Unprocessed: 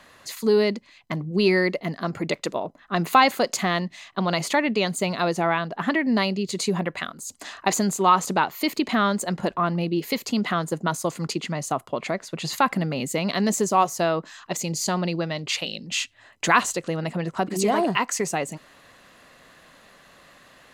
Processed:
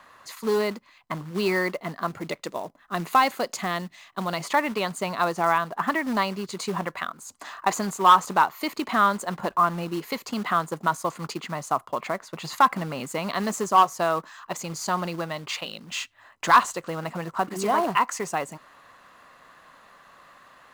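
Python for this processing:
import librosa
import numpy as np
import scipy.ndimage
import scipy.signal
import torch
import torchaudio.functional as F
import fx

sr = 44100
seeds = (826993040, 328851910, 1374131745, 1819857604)

y = fx.quant_float(x, sr, bits=2)
y = fx.peak_eq(y, sr, hz=1100.0, db=fx.steps((0.0, 11.5), (2.09, 5.0), (4.43, 12.0)), octaves=1.2)
y = np.clip(y, -10.0 ** (-2.0 / 20.0), 10.0 ** (-2.0 / 20.0))
y = y * 10.0 ** (-6.5 / 20.0)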